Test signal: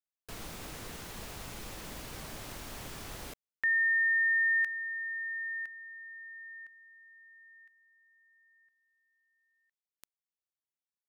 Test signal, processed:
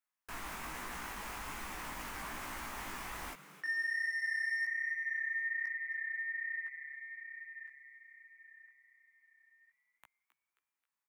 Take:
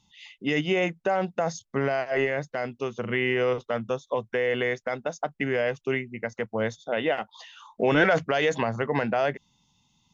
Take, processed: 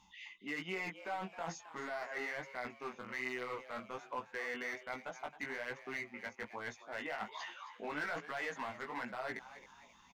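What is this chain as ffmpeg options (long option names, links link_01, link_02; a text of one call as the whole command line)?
ffmpeg -i in.wav -filter_complex "[0:a]equalizer=frequency=125:width_type=o:width=1:gain=-12,equalizer=frequency=250:width_type=o:width=1:gain=3,equalizer=frequency=500:width_type=o:width=1:gain=-7,equalizer=frequency=1000:width_type=o:width=1:gain=9,equalizer=frequency=2000:width_type=o:width=1:gain=6,equalizer=frequency=4000:width_type=o:width=1:gain=-5,areverse,acompressor=threshold=-39dB:ratio=4:attack=2.4:release=337:knee=1:detection=rms,areverse,asoftclip=type=hard:threshold=-35.5dB,flanger=delay=15.5:depth=5:speed=1.2,asplit=5[link_01][link_02][link_03][link_04][link_05];[link_02]adelay=267,afreqshift=140,volume=-14dB[link_06];[link_03]adelay=534,afreqshift=280,volume=-20.9dB[link_07];[link_04]adelay=801,afreqshift=420,volume=-27.9dB[link_08];[link_05]adelay=1068,afreqshift=560,volume=-34.8dB[link_09];[link_01][link_06][link_07][link_08][link_09]amix=inputs=5:normalize=0,volume=5dB" out.wav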